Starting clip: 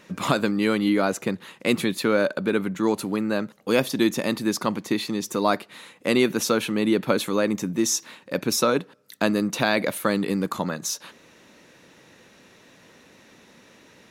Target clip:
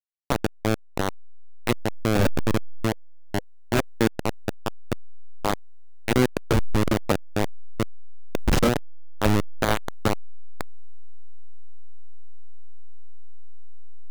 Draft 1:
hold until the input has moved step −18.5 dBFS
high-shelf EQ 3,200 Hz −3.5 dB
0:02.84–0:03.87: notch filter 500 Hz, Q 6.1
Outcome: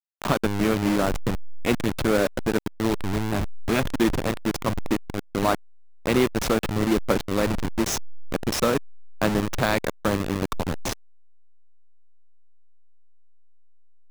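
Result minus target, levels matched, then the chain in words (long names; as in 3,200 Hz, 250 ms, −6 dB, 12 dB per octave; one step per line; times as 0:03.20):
hold until the input has moved: distortion −10 dB
hold until the input has moved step −11.5 dBFS
high-shelf EQ 3,200 Hz −3.5 dB
0:02.84–0:03.87: notch filter 500 Hz, Q 6.1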